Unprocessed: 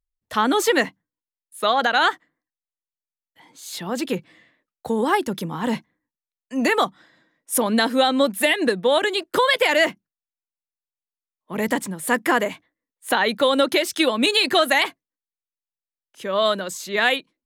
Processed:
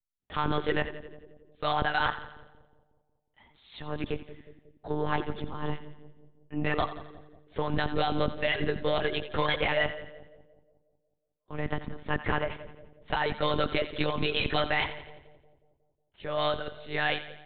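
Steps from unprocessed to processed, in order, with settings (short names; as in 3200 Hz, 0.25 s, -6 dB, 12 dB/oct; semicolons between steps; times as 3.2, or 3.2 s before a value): soft clip -11.5 dBFS, distortion -17 dB; monotone LPC vocoder at 8 kHz 150 Hz; on a send: split-band echo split 600 Hz, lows 0.182 s, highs 86 ms, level -13 dB; on the sum: gain -7.5 dB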